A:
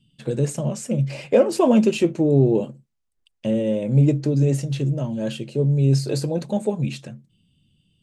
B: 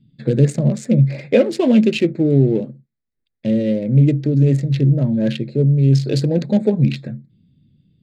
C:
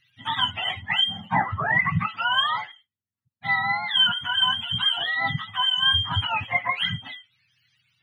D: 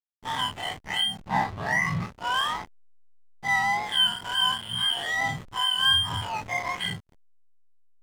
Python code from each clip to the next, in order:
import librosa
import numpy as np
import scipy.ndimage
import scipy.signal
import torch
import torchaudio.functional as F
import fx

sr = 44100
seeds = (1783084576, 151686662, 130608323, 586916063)

y1 = fx.wiener(x, sr, points=15)
y1 = fx.graphic_eq(y1, sr, hz=(125, 250, 500, 1000, 2000, 4000), db=(7, 7, 4, -8, 12, 11))
y1 = fx.rider(y1, sr, range_db=3, speed_s=0.5)
y1 = F.gain(torch.from_numpy(y1), -2.0).numpy()
y2 = fx.octave_mirror(y1, sr, pivot_hz=660.0)
y2 = F.gain(torch.from_numpy(y2), -4.5).numpy()
y3 = fx.spec_blur(y2, sr, span_ms=101.0)
y3 = fx.notch_comb(y3, sr, f0_hz=1400.0)
y3 = fx.backlash(y3, sr, play_db=-28.0)
y3 = F.gain(torch.from_numpy(y3), 3.0).numpy()